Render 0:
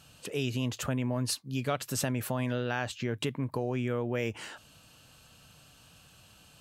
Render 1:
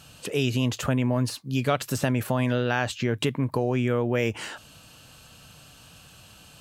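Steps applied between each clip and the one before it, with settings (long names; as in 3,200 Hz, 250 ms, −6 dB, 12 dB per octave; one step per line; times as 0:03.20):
de-essing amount 75%
level +7 dB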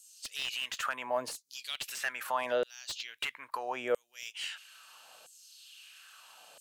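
auto-filter high-pass saw down 0.76 Hz 530–7,900 Hz
slew-rate limiting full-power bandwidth 180 Hz
level −5 dB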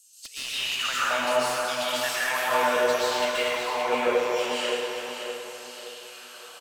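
repeating echo 571 ms, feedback 40%, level −8 dB
dense smooth reverb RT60 3 s, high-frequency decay 0.6×, pre-delay 110 ms, DRR −10 dB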